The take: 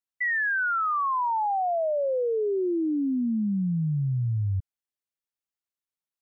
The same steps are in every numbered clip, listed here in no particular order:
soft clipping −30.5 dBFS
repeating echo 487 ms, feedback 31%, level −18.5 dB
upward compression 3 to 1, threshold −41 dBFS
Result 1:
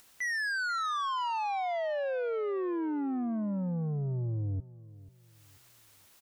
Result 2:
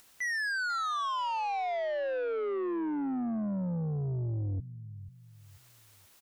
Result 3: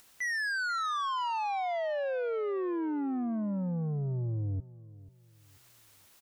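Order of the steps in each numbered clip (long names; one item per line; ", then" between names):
soft clipping, then upward compression, then repeating echo
upward compression, then repeating echo, then soft clipping
upward compression, then soft clipping, then repeating echo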